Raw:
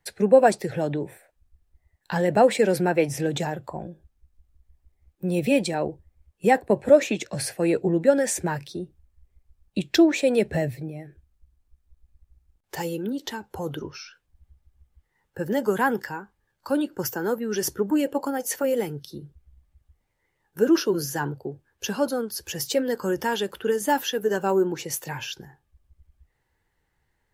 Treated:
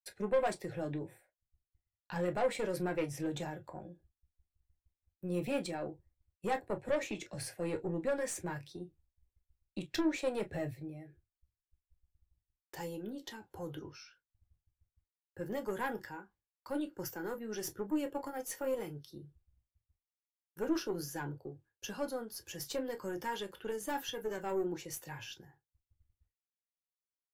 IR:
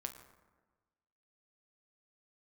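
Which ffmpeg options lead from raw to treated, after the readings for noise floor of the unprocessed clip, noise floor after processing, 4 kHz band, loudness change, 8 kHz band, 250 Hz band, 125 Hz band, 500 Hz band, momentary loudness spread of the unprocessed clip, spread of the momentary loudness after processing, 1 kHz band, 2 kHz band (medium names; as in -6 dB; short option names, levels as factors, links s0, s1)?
-74 dBFS, under -85 dBFS, -13.0 dB, -14.0 dB, -13.5 dB, -14.0 dB, -12.5 dB, -14.5 dB, 17 LU, 15 LU, -14.0 dB, -13.0 dB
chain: -filter_complex "[0:a]agate=range=0.0224:threshold=0.00355:ratio=3:detection=peak,aeval=exprs='(tanh(6.31*val(0)+0.4)-tanh(0.4))/6.31':c=same[s0];[1:a]atrim=start_sample=2205,atrim=end_sample=3528,asetrate=70560,aresample=44100[s1];[s0][s1]afir=irnorm=-1:irlink=0,volume=0.596"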